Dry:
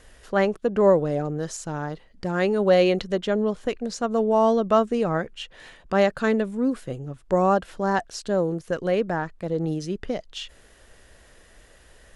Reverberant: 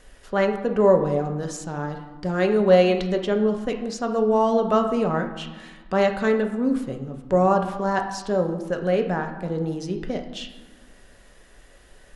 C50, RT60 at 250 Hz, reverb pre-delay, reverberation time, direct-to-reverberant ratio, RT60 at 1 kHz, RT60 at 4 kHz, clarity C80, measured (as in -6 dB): 8.0 dB, 1.8 s, 4 ms, 1.2 s, 4.0 dB, 1.3 s, 0.80 s, 10.5 dB